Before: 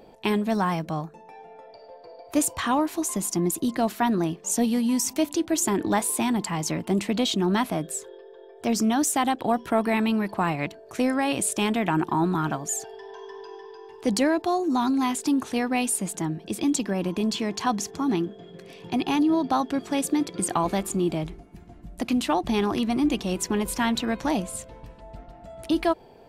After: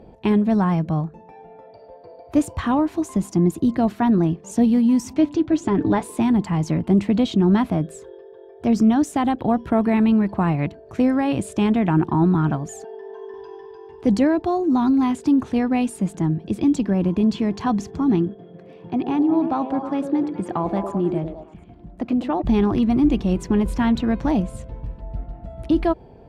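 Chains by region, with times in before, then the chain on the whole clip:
5.14–6.03 s: low-pass 5.2 kHz + comb 6.9 ms, depth 46%
12.82–13.34 s: high-pass 190 Hz 24 dB/octave + treble shelf 2.2 kHz -10 dB + comb 4.6 ms, depth 51%
18.34–22.42 s: high-pass 290 Hz 6 dB/octave + treble shelf 2.9 kHz -11 dB + repeats whose band climbs or falls 103 ms, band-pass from 450 Hz, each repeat 0.7 oct, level -2.5 dB
whole clip: high-pass 42 Hz; RIAA curve playback

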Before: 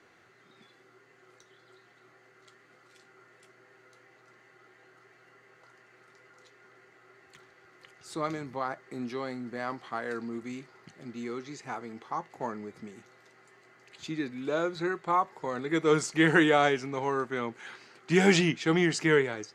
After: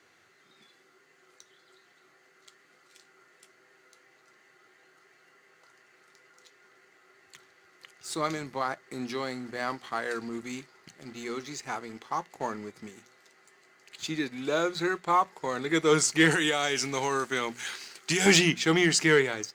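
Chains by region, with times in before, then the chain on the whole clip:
16.31–18.26 s: treble shelf 3.1 kHz +10.5 dB + compression 12:1, threshold -25 dBFS
whole clip: treble shelf 2.6 kHz +10 dB; hum notches 60/120/180/240 Hz; waveshaping leveller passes 1; trim -2.5 dB

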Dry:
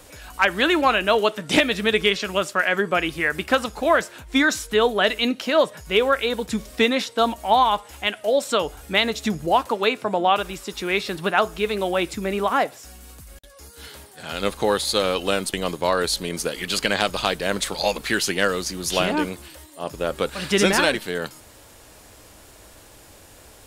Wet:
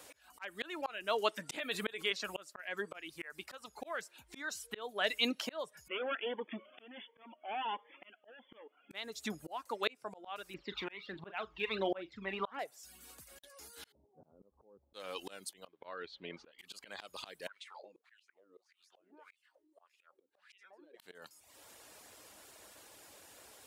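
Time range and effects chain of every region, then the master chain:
1.51–2.12 s: high-pass 150 Hz 6 dB/octave + peaking EQ 5.5 kHz -10.5 dB 0.27 oct + level flattener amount 50%
5.88–8.91 s: overload inside the chain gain 23 dB + brick-wall FIR band-pass 200–3500 Hz + Shepard-style phaser rising 1.4 Hz
10.54–12.59 s: low-pass 3.5 kHz 24 dB/octave + phaser 1.4 Hz, delay 1.2 ms, feedback 59% + doubling 41 ms -11 dB
13.92–14.94 s: bass shelf 300 Hz +7 dB + compression 10:1, threshold -26 dBFS + Gaussian low-pass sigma 12 samples
15.67–16.59 s: low-pass 3.3 kHz 24 dB/octave + upward expansion, over -31 dBFS
17.47–21.00 s: tilt EQ +2 dB/octave + compression 16:1, threshold -24 dBFS + wah-wah 1.7 Hz 290–2700 Hz, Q 4.3
whole clip: high-pass 450 Hz 6 dB/octave; reverb removal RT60 0.56 s; slow attack 563 ms; trim -6.5 dB

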